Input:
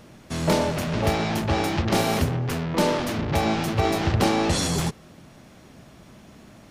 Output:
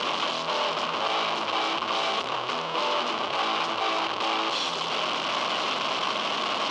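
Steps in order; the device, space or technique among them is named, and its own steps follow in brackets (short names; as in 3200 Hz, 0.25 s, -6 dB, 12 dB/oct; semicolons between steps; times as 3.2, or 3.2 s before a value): home computer beeper (infinite clipping; speaker cabinet 530–4800 Hz, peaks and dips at 1100 Hz +9 dB, 1800 Hz -8 dB, 3000 Hz +8 dB)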